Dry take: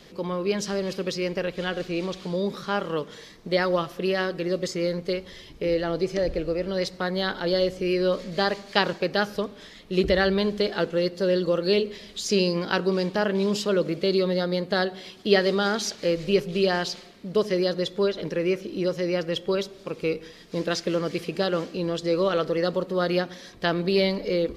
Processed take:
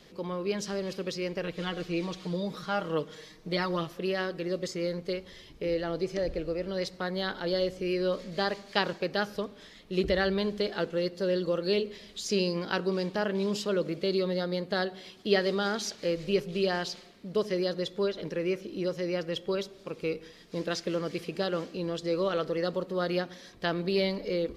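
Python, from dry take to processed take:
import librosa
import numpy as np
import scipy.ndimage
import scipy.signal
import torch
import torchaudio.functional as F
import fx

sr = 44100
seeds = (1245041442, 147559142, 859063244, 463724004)

y = fx.comb(x, sr, ms=6.4, depth=0.65, at=(1.42, 3.94))
y = F.gain(torch.from_numpy(y), -5.5).numpy()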